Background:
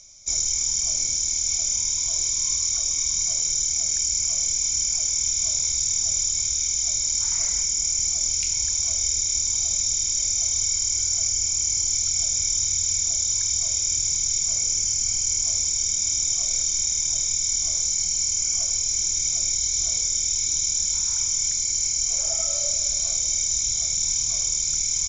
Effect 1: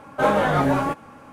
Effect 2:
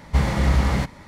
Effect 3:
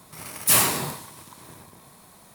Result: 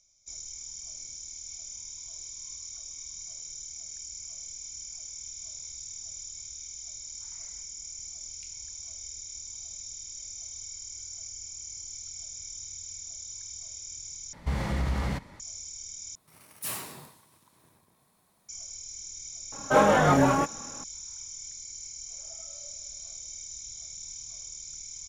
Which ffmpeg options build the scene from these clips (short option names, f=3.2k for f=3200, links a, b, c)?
-filter_complex "[0:a]volume=-18dB[a];[2:a]acompressor=threshold=-18dB:ratio=4:attack=7.2:release=125:knee=6:detection=peak[b];[a]asplit=3[c][d][e];[c]atrim=end=14.334[f];[b]atrim=end=1.07,asetpts=PTS-STARTPTS,volume=-6.5dB[g];[d]atrim=start=15.396:end=16.154[h];[3:a]atrim=end=2.34,asetpts=PTS-STARTPTS,volume=-17dB[i];[e]atrim=start=18.486[j];[1:a]atrim=end=1.32,asetpts=PTS-STARTPTS,volume=-1dB,afade=t=in:d=0.004:c=hsin,afade=t=out:st=1.316:d=0.004:c=hsin,adelay=19520[k];[f][g]acrossfade=d=0.004:c1=hsin:c2=hsin[l];[l][h]acrossfade=d=0.004:c1=hsin:c2=hsin[m];[m][i]acrossfade=d=0.004:c1=hsin:c2=hsin[n];[n][j]acrossfade=d=0.004:c1=hsin:c2=hsin[o];[o][k]amix=inputs=2:normalize=0"